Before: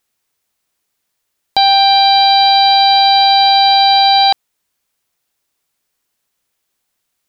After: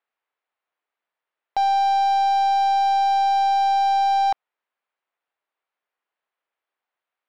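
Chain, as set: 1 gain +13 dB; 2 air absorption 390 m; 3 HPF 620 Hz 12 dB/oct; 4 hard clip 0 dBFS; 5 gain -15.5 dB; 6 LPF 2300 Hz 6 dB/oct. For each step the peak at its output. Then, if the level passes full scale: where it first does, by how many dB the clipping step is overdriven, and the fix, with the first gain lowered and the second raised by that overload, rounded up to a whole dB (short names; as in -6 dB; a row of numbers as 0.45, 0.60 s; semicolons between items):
+9.5, +4.5, +6.5, 0.0, -15.5, -15.5 dBFS; step 1, 6.5 dB; step 1 +6 dB, step 5 -8.5 dB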